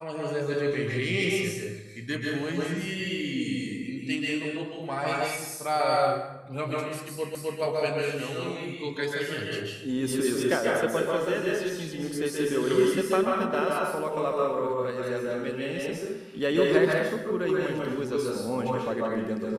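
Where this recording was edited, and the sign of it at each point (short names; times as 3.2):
7.35 repeat of the last 0.26 s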